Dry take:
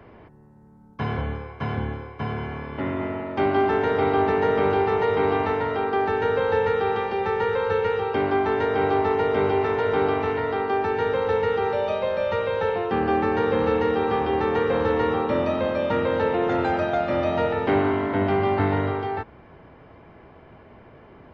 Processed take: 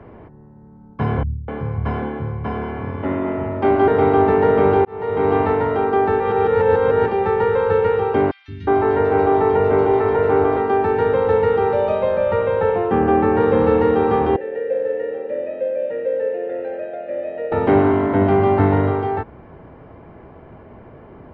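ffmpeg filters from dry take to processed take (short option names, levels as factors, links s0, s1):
-filter_complex "[0:a]asettb=1/sr,asplit=3[s0][s1][s2];[s0]atrim=end=1.234[s3];[s1]atrim=start=1.23:end=3.88,asetpts=PTS-STARTPTS,afade=t=in:d=0.004:c=qsin,afade=t=out:st=2.646:d=0.004:c=qsin,acrossover=split=170[s4][s5];[s5]adelay=250[s6];[s4][s6]amix=inputs=2:normalize=0,atrim=end_sample=116865[s7];[s2]atrim=start=3.876[s8];[s3][s7]acrossfade=d=0.004:c1=hsin:c2=qsin[s9];[s9][s8]acrossfade=d=0.004:c1=qsin:c2=hsin,asettb=1/sr,asplit=3[s10][s11][s12];[s10]atrim=end=8.314[s13];[s11]atrim=start=8.31:end=10.57,asetpts=PTS-STARTPTS,afade=t=in:d=0.004:c=qsin,afade=t=out:st=2.256:d=0.004:c=qsin,acrossover=split=180|3000[s14][s15][s16];[s14]adelay=170[s17];[s15]adelay=360[s18];[s17][s18][s16]amix=inputs=3:normalize=0,atrim=end_sample=99666[s19];[s12]atrim=start=10.566[s20];[s13][s19]acrossfade=d=0.004:c1=hsin:c2=qsin[s21];[s21][s20]acrossfade=d=0.004:c1=qsin:c2=hsin,asettb=1/sr,asplit=3[s22][s23][s24];[s22]atrim=end=12.164[s25];[s23]atrim=start=12.16:end=13.41,asetpts=PTS-STARTPTS,afade=t=in:d=0.004:c=qsin,afade=t=out:st=1.246:d=0.004:c=qsin,lowpass=3600[s26];[s24]atrim=start=13.406[s27];[s25][s26]acrossfade=d=0.004:c1=hsin:c2=qsin[s28];[s28][s27]acrossfade=d=0.004:c1=qsin:c2=hsin,asettb=1/sr,asplit=3[s29][s30][s31];[s29]atrim=end=14.364[s32];[s30]atrim=start=14.36:end=17.52,asetpts=PTS-STARTPTS,afade=t=in:d=0.004:c=qsin,afade=t=out:st=3.156:d=0.004:c=qsin,asplit=3[s33][s34][s35];[s33]bandpass=f=530:t=q:w=8,volume=1[s36];[s34]bandpass=f=1840:t=q:w=8,volume=0.501[s37];[s35]bandpass=f=2480:t=q:w=8,volume=0.355[s38];[s36][s37][s38]amix=inputs=3:normalize=0[s39];[s31]atrim=start=17.516[s40];[s32][s39]acrossfade=d=0.004:c1=hsin:c2=qsin[s41];[s41][s40]acrossfade=d=0.004:c1=qsin:c2=hsin,asplit=4[s42][s43][s44][s45];[s42]atrim=end=4.85,asetpts=PTS-STARTPTS,afade=t=out:st=4.846:d=0.004:c=hsin[s46];[s43]atrim=start=4.85:end=6.202,asetpts=PTS-STARTPTS,afade=t=in:d=0.52[s47];[s44]atrim=start=6.198:end=7.082,asetpts=PTS-STARTPTS,areverse[s48];[s45]atrim=start=7.078[s49];[s46][s47]concat=n=2:v=0:a=1[s50];[s50][s48]acrossfade=d=0.004:c1=hsin:c2=hsin[s51];[s51][s49]acrossfade=d=0.004:c1=hsin:c2=hsin,lowpass=f=1000:p=1,volume=2.37"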